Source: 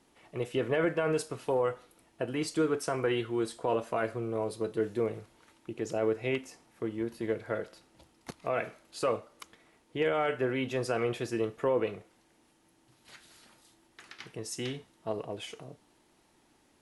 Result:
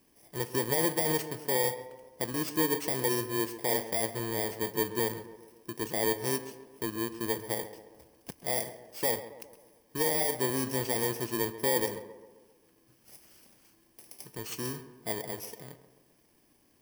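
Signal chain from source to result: bit-reversed sample order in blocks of 32 samples; tape echo 134 ms, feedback 58%, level -11 dB, low-pass 1.6 kHz

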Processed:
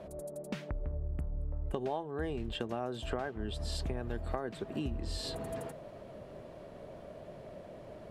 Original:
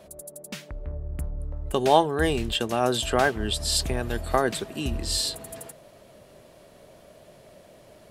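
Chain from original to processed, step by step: low-pass 1.1 kHz 6 dB/octave; compression 8:1, threshold -37 dBFS, peak gain reduction 22.5 dB; trim +4 dB

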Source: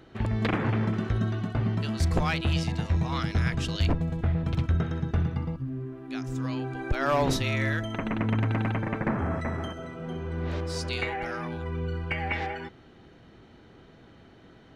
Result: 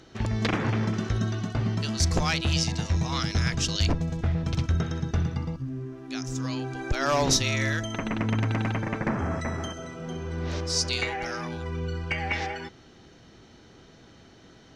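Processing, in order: peaking EQ 5.9 kHz +15 dB 1 oct

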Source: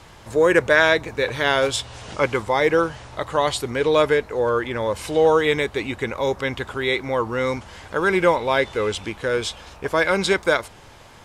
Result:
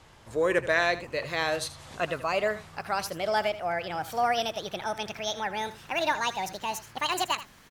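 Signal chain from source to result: gliding tape speed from 97% -> 195%; on a send: delay 80 ms -14.5 dB; on the sum: trim -9 dB

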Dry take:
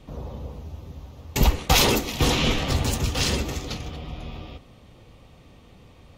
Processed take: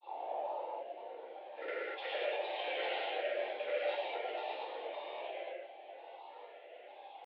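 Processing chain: compression 6:1, threshold -33 dBFS, peak gain reduction 18.5 dB; tempo 0.85×; vowel filter e; granulator, pitch spread up and down by 7 st; reverberation, pre-delay 3 ms, DRR -7 dB; mistuned SSB +140 Hz 190–3500 Hz; trim +5.5 dB

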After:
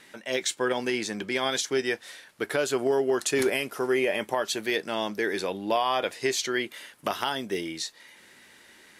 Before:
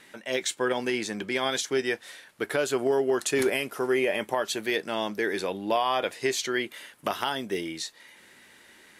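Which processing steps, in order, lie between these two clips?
peaking EQ 5.2 kHz +2.5 dB

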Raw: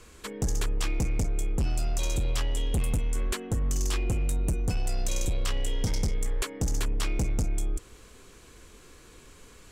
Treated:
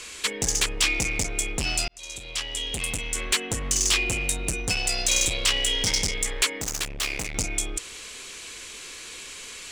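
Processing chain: high-order bell 4.6 kHz +10 dB 2.7 oct; 1.88–3.50 s: fade in; 6.57–7.35 s: hard clipper -29.5 dBFS, distortion -15 dB; overdrive pedal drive 14 dB, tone 7.6 kHz, clips at -11 dBFS

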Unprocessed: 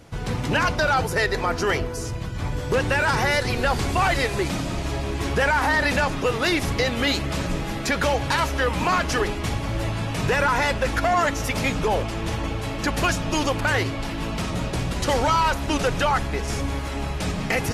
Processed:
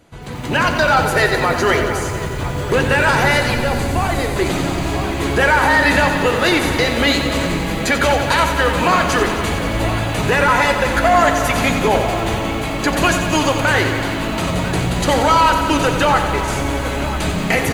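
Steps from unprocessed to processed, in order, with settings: bass shelf 91 Hz -6.5 dB; band-stop 5.4 kHz, Q 5.4; echo from a far wall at 170 m, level -13 dB; level rider gain up to 11.5 dB; 3.54–4.36 s: peaking EQ 2.1 kHz -9 dB 3 oct; reverberation RT60 0.80 s, pre-delay 3 ms, DRR 10 dB; bit-crushed delay 90 ms, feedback 80%, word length 6-bit, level -9 dB; trim -3 dB

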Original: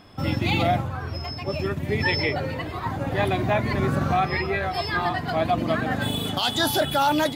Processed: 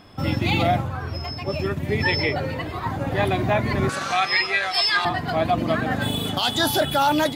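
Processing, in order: 3.89–5.05 s: frequency weighting ITU-R 468; trim +1.5 dB

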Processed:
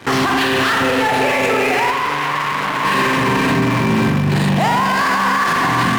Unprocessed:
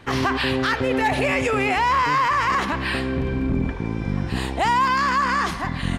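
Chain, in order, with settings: high-pass 120 Hz 24 dB/octave; on a send: two-band feedback delay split 650 Hz, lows 292 ms, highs 518 ms, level -8 dB; on the sum: spring tank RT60 2 s, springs 41 ms, chirp 25 ms, DRR -1.5 dB; in parallel at -11 dB: fuzz box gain 38 dB, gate -44 dBFS; on the sum: loudness maximiser +12.5 dB; 1.91–2.85 s: transformer saturation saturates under 1.3 kHz; trim -8 dB

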